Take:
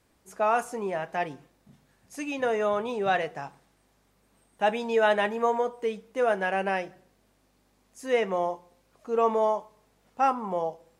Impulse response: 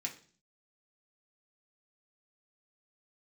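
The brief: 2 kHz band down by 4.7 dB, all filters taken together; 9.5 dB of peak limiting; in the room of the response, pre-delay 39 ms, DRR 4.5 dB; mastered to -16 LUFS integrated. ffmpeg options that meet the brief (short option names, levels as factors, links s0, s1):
-filter_complex "[0:a]equalizer=f=2000:t=o:g=-6.5,alimiter=limit=0.0841:level=0:latency=1,asplit=2[s0][s1];[1:a]atrim=start_sample=2205,adelay=39[s2];[s1][s2]afir=irnorm=-1:irlink=0,volume=0.596[s3];[s0][s3]amix=inputs=2:normalize=0,volume=5.96"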